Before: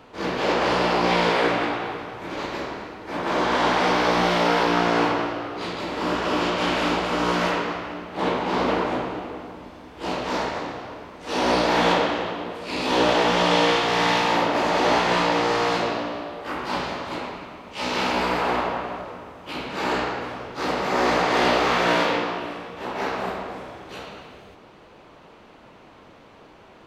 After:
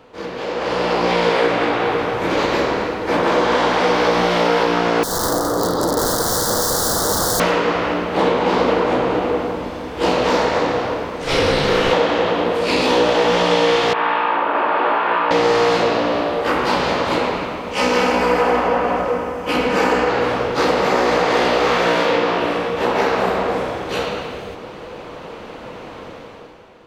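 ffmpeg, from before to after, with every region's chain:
-filter_complex "[0:a]asettb=1/sr,asplit=3[a][b][c];[a]atrim=end=5.034[d];[b]atrim=start=5.03:end=7.4,asetpts=PTS-STARTPTS,afade=t=in:d=0.004:c=qsin,afade=t=out:st=2.366:d=0.004:c=qsin,aeval=exprs='(mod(11.2*val(0)+1,2)-1)/11.2':c=same,asuperstop=centerf=2500:order=4:qfactor=0.83,aecho=1:1:215|430|645|860:0.398|0.151|0.0575|0.0218,atrim=end_sample=104517[e];[c]atrim=start=7.396[f];[d][e]acrossfade=d=0.004:c1=hsin:c2=qsin[g];[g][f]acrossfade=d=0.004:c1=qsin:c2=hsin,asettb=1/sr,asplit=3[h][i][j];[h]atrim=end=11.244[k];[i]atrim=start=11.24:end=11.93,asetpts=PTS-STARTPTS,afade=t=in:d=0.004:c=qsin,afade=t=out:st=0.686:d=0.004:c=qsin,highpass=750,afreqshift=-460[l];[j]atrim=start=11.926[m];[k][l]acrossfade=d=0.004:c1=hsin:c2=qsin[n];[n][m]acrossfade=d=0.004:c1=qsin:c2=hsin,asettb=1/sr,asplit=3[o][p][q];[o]atrim=end=13.934[r];[p]atrim=start=13.93:end=15.31,asetpts=PTS-STARTPTS,afade=t=in:d=0.004:c=qsin,afade=t=out:st=1.376:d=0.004:c=qsin,highpass=500,equalizer=f=500:t=q:w=4:g=-10,equalizer=f=730:t=q:w=4:g=-6,equalizer=f=1.3k:t=q:w=4:g=3,equalizer=f=2k:t=q:w=4:g=-9,lowpass=f=2.3k:w=0.5412,lowpass=f=2.3k:w=1.3066,bandreject=f=1.3k:w=25[s];[q]atrim=start=15.306[t];[r][s]acrossfade=d=0.004:c1=hsin:c2=qsin[u];[u][t]acrossfade=d=0.004:c1=qsin:c2=hsin,asettb=1/sr,asplit=3[v][w][x];[v]atrim=end=17.734[y];[w]atrim=start=17.73:end=20.09,asetpts=PTS-STARTPTS,afade=t=in:d=0.004:c=qsin,afade=t=out:st=2.356:d=0.004:c=qsin,equalizer=f=3.8k:w=3.6:g=-9.5,aecho=1:1:4:0.41,atrim=end_sample=104076[z];[x]atrim=start=20.086[aa];[y][z]acrossfade=d=0.004:c1=hsin:c2=qsin[ab];[ab][aa]acrossfade=d=0.004:c1=qsin:c2=hsin,acompressor=threshold=-28dB:ratio=6,equalizer=f=490:t=o:w=0.22:g=8,dynaudnorm=f=110:g=13:m=13.5dB"

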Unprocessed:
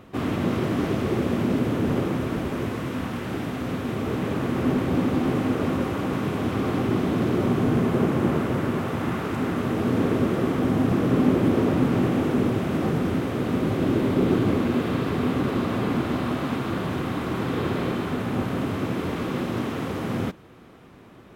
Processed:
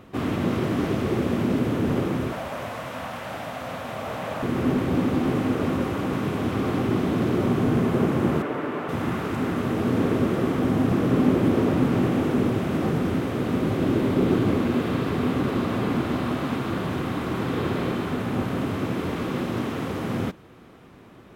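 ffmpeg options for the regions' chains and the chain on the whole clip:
-filter_complex "[0:a]asettb=1/sr,asplit=3[a][b][c];[a]atrim=end=2.324[d];[b]atrim=start=2.32:end=4.43,asetpts=PTS-STARTPTS,afade=t=in:d=0.004:c=qsin,afade=t=out:st=2.106:d=0.004:c=qsin,highpass=49,lowshelf=f=480:t=q:w=3:g=-8[e];[c]atrim=start=4.426[f];[d][e]acrossfade=d=0.004:c1=hsin:c2=qsin[g];[g][f]acrossfade=d=0.004:c1=qsin:c2=hsin,asettb=1/sr,asplit=3[h][i][j];[h]atrim=end=8.424[k];[i]atrim=start=8.42:end=8.89,asetpts=PTS-STARTPTS,afade=t=in:d=0.004:c=qsin,afade=t=out:st=0.466:d=0.004:c=qsin,acrossover=split=260 3200:gain=0.141 1 0.251[l][m][n];[l][m][n]amix=inputs=3:normalize=0,aecho=1:1:6.8:0.37,atrim=end_sample=20727[o];[j]atrim=start=8.886[p];[k][o]acrossfade=d=0.004:c1=hsin:c2=qsin[q];[q][p]acrossfade=d=0.004:c1=qsin:c2=hsin"

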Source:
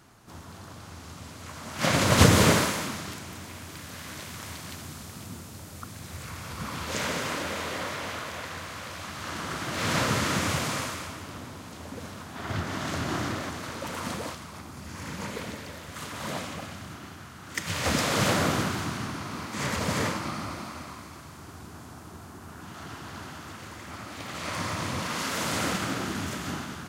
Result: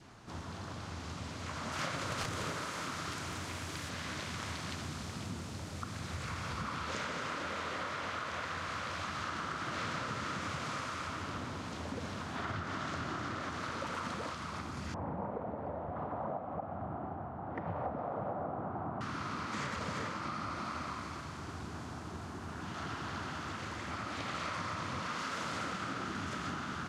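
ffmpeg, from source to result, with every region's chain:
-filter_complex "[0:a]asettb=1/sr,asplit=3[a][b][c];[a]atrim=end=1.724[d];[b]atrim=start=1.72:end=3.89,asetpts=PTS-STARTPTS,afade=t=in:d=0.004:c=qsin,afade=t=out:st=2.166:d=0.004:c=qsin,highshelf=f=8.7k:g=10,aeval=exprs='(mod(2.66*val(0)+1,2)-1)/2.66':c=same,bandreject=f=210:w=6.2[e];[c]atrim=start=3.886[f];[d][e]acrossfade=d=0.004:c1=hsin:c2=qsin[g];[g][f]acrossfade=d=0.004:c1=qsin:c2=hsin,asettb=1/sr,asplit=3[h][i][j];[h]atrim=end=14.944[k];[i]atrim=start=14.94:end=19.01,asetpts=PTS-STARTPTS,afade=t=in:d=0.004:c=qsin,afade=t=out:st=4.066:d=0.004:c=qsin,lowpass=f=750:t=q:w=4.1,aemphasis=mode=reproduction:type=50fm[l];[j]atrim=start=19.006[m];[k][l]acrossfade=d=0.004:c1=hsin:c2=qsin[n];[n][m]acrossfade=d=0.004:c1=qsin:c2=hsin,lowpass=6.1k,adynamicequalizer=threshold=0.00447:dfrequency=1300:dqfactor=2.7:tfrequency=1300:tqfactor=2.7:attack=5:release=100:ratio=0.375:range=3.5:mode=boostabove:tftype=bell,acompressor=threshold=-36dB:ratio=12,volume=1dB"

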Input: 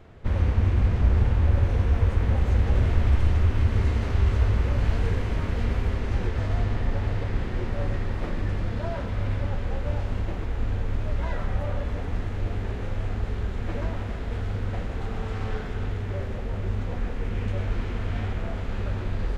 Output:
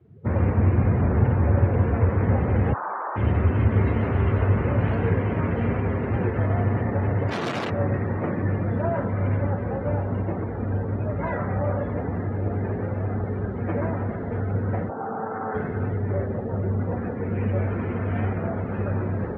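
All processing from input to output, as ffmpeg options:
-filter_complex "[0:a]asettb=1/sr,asplit=3[a][b][c];[a]atrim=end=2.734[d];[b]atrim=start=2.73:end=3.16,asetpts=PTS-STARTPTS,afade=t=in:d=0.004:c=qsin,afade=t=out:st=0.426:d=0.004:c=qsin,highpass=f=2k:t=q:w=3.4,lowpass=f=2.6k:t=q:w=0.5098,lowpass=f=2.6k:t=q:w=0.6013,lowpass=f=2.6k:t=q:w=0.9,lowpass=f=2.6k:t=q:w=2.563,afreqshift=-3000[e];[c]atrim=start=3.156[f];[d][e]acrossfade=d=0.004:c1=hsin:c2=qsin[g];[g][f]acrossfade=d=0.004:c1=qsin:c2=hsin,asettb=1/sr,asplit=3[h][i][j];[h]atrim=end=7.294[k];[i]atrim=start=7.29:end=7.7,asetpts=PTS-STARTPTS,afade=t=in:d=0.004:c=qsin,afade=t=out:st=0.406:d=0.004:c=qsin,highpass=56,equalizer=f=79:w=3.1:g=7,aeval=exprs='(mod(25.1*val(0)+1,2)-1)/25.1':c=same[l];[j]atrim=start=7.696[m];[k][l]acrossfade=d=0.004:c1=hsin:c2=qsin[n];[n][m]acrossfade=d=0.004:c1=qsin:c2=hsin,asettb=1/sr,asplit=3[o][p][q];[o]atrim=end=14.894[r];[p]atrim=start=14.89:end=15.55,asetpts=PTS-STARTPTS,afade=t=in:d=0.004:c=qsin,afade=t=out:st=0.656:d=0.004:c=qsin,adynamicsmooth=sensitivity=7:basefreq=620,highpass=260,equalizer=f=370:t=q:w=4:g=-4,equalizer=f=820:t=q:w=4:g=7,equalizer=f=1.4k:t=q:w=4:g=5,lowpass=f=2.5k:w=0.5412,lowpass=f=2.5k:w=1.3066[s];[q]atrim=start=15.546[t];[r][s]acrossfade=d=0.004:c1=hsin:c2=qsin[u];[u][t]acrossfade=d=0.004:c1=qsin:c2=hsin,highpass=f=100:w=0.5412,highpass=f=100:w=1.3066,afftdn=nr=25:nf=-41,lowpass=f=2.3k:p=1,volume=8dB"

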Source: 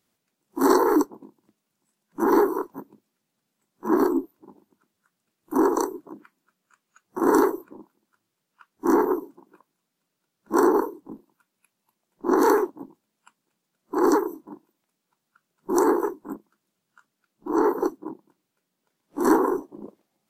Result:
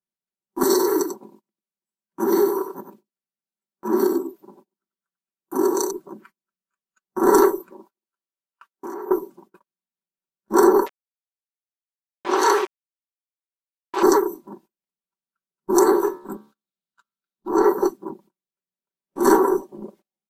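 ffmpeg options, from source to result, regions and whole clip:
-filter_complex "[0:a]asettb=1/sr,asplit=3[a][b][c];[a]atrim=end=0.634[d];[b]atrim=start=0.63:end=5.91,asetpts=PTS-STARTPTS,afade=t=in:d=0.004:c=qsin,afade=t=out:st=5.276:d=0.004:c=qsin,highpass=f=210:p=1,acrossover=split=400|3000[e][f][g];[f]acompressor=threshold=-31dB:ratio=4:attack=3.2:release=140:knee=2.83:detection=peak[h];[e][h][g]amix=inputs=3:normalize=0,aecho=1:1:94:0.422,atrim=end_sample=232848[i];[c]atrim=start=5.906[j];[d][i]acrossfade=d=0.004:c1=hsin:c2=qsin[k];[k][j]acrossfade=d=0.004:c1=qsin:c2=hsin,asettb=1/sr,asplit=3[l][m][n];[l]atrim=end=7.704[o];[m]atrim=start=7.7:end=9.11,asetpts=PTS-STARTPTS,afade=t=in:d=0.004:c=qsin,afade=t=out:st=1.406:d=0.004:c=qsin,highpass=320,acompressor=threshold=-32dB:ratio=16:attack=3.2:release=140:knee=1:detection=peak[p];[n]atrim=start=9.106[q];[o][p]acrossfade=d=0.004:c1=hsin:c2=qsin[r];[r][q]acrossfade=d=0.004:c1=qsin:c2=hsin,asettb=1/sr,asplit=3[s][t][u];[s]atrim=end=10.864[v];[t]atrim=start=10.86:end=14.03,asetpts=PTS-STARTPTS,afade=t=in:d=0.004:c=qsin,afade=t=out:st=3.166:d=0.004:c=qsin,aemphasis=mode=production:type=75kf,aeval=exprs='val(0)*gte(abs(val(0)),0.0473)':c=same,highpass=510,lowpass=4k[w];[u]atrim=start=14.026[x];[v][w]acrossfade=d=0.004:c1=hsin:c2=qsin[y];[y][x]acrossfade=d=0.004:c1=qsin:c2=hsin,asettb=1/sr,asplit=3[z][aa][ab];[z]atrim=end=15.864[ac];[aa]atrim=start=15.86:end=17.48,asetpts=PTS-STARTPTS,afade=t=in:d=0.004:c=qsin,afade=t=out:st=1.616:d=0.004:c=qsin,equalizer=f=3.8k:w=2.7:g=9.5,bandreject=f=71.67:t=h:w=4,bandreject=f=143.34:t=h:w=4,bandreject=f=215.01:t=h:w=4,bandreject=f=286.68:t=h:w=4,bandreject=f=358.35:t=h:w=4,bandreject=f=430.02:t=h:w=4,bandreject=f=501.69:t=h:w=4,bandreject=f=573.36:t=h:w=4,bandreject=f=645.03:t=h:w=4,bandreject=f=716.7:t=h:w=4,bandreject=f=788.37:t=h:w=4,bandreject=f=860.04:t=h:w=4,bandreject=f=931.71:t=h:w=4,bandreject=f=1.00338k:t=h:w=4,bandreject=f=1.07505k:t=h:w=4,bandreject=f=1.14672k:t=h:w=4,bandreject=f=1.21839k:t=h:w=4,bandreject=f=1.29006k:t=h:w=4,bandreject=f=1.36173k:t=h:w=4,bandreject=f=1.4334k:t=h:w=4,bandreject=f=1.50507k:t=h:w=4,bandreject=f=1.57674k:t=h:w=4,bandreject=f=1.64841k:t=h:w=4,bandreject=f=1.72008k:t=h:w=4,bandreject=f=1.79175k:t=h:w=4,bandreject=f=1.86342k:t=h:w=4,bandreject=f=1.93509k:t=h:w=4,bandreject=f=2.00676k:t=h:w=4,bandreject=f=2.07843k:t=h:w=4,bandreject=f=2.1501k:t=h:w=4,bandreject=f=2.22177k:t=h:w=4,bandreject=f=2.29344k:t=h:w=4,bandreject=f=2.36511k:t=h:w=4,bandreject=f=2.43678k:t=h:w=4,bandreject=f=2.50845k:t=h:w=4,bandreject=f=2.58012k:t=h:w=4,bandreject=f=2.65179k:t=h:w=4[ad];[ab]atrim=start=17.476[ae];[ac][ad]acrossfade=d=0.004:c1=hsin:c2=qsin[af];[af][ae]acrossfade=d=0.004:c1=qsin:c2=hsin,aecho=1:1:5.2:0.7,agate=range=-26dB:threshold=-51dB:ratio=16:detection=peak,adynamicequalizer=threshold=0.02:dfrequency=2200:dqfactor=0.7:tfrequency=2200:tqfactor=0.7:attack=5:release=100:ratio=0.375:range=2:mode=boostabove:tftype=highshelf,volume=2dB"

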